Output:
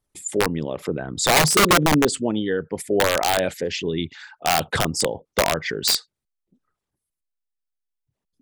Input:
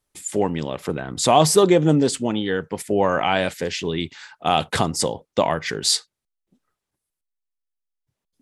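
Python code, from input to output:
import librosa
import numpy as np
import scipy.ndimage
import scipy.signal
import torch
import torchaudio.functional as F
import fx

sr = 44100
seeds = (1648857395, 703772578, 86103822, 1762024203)

y = fx.envelope_sharpen(x, sr, power=1.5)
y = (np.mod(10.0 ** (10.0 / 20.0) * y + 1.0, 2.0) - 1.0) / 10.0 ** (10.0 / 20.0)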